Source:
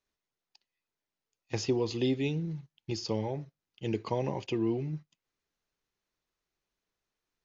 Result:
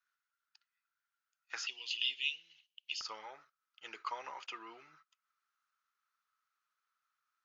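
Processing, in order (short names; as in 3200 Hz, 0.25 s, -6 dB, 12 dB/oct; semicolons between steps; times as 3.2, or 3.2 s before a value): resonant high-pass 1400 Hz, resonance Q 11, from 1.67 s 2900 Hz, from 3.01 s 1300 Hz; gain -5 dB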